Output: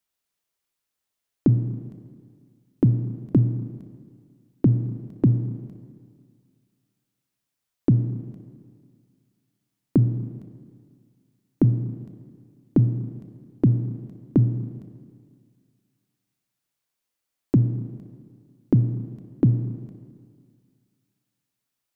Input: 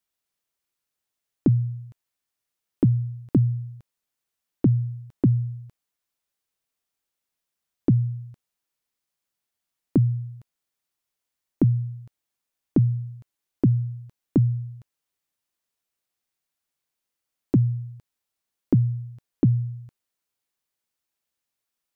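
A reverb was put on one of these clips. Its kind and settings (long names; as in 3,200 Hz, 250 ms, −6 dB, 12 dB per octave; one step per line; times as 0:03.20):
four-comb reverb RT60 2 s, combs from 27 ms, DRR 9 dB
level +1 dB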